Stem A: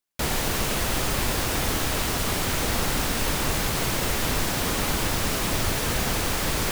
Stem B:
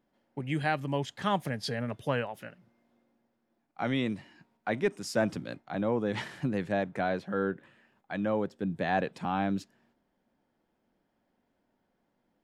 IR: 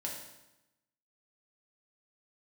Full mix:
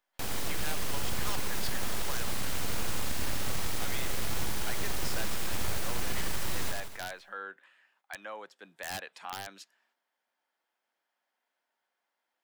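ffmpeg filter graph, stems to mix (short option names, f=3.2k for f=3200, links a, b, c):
-filter_complex "[0:a]aeval=exprs='abs(val(0))':c=same,volume=-5.5dB,asplit=2[a][b];[b]volume=-5dB[c];[1:a]highpass=1.1k,aeval=exprs='(mod(20*val(0)+1,2)-1)/20':c=same,volume=0.5dB[d];[c]aecho=0:1:82|164|246|328|410|492|574|656:1|0.52|0.27|0.141|0.0731|0.038|0.0198|0.0103[e];[a][d][e]amix=inputs=3:normalize=0,acrossover=split=190[f][g];[g]acompressor=threshold=-40dB:ratio=1.5[h];[f][h]amix=inputs=2:normalize=0"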